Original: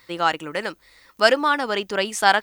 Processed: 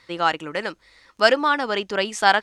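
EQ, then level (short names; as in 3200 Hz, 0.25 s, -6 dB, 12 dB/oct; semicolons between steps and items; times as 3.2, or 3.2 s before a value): LPF 7300 Hz 12 dB/oct; 0.0 dB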